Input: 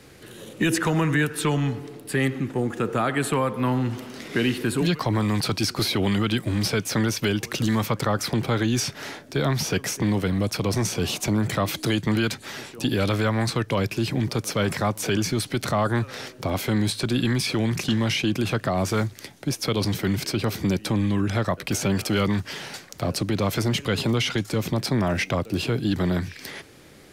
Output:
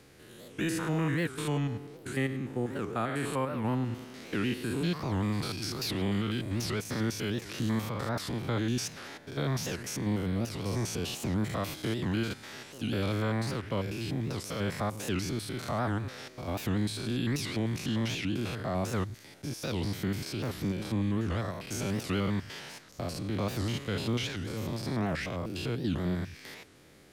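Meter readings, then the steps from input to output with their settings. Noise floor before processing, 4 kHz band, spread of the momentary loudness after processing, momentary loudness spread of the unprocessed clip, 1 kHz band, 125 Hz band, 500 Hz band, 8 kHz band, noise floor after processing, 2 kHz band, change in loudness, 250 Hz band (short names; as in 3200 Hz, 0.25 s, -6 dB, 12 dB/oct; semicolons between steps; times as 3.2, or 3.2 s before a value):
-47 dBFS, -9.5 dB, 7 LU, 6 LU, -9.0 dB, -7.5 dB, -8.5 dB, -10.0 dB, -51 dBFS, -9.5 dB, -8.5 dB, -8.0 dB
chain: stepped spectrum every 0.1 s; record warp 78 rpm, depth 250 cents; gain -6.5 dB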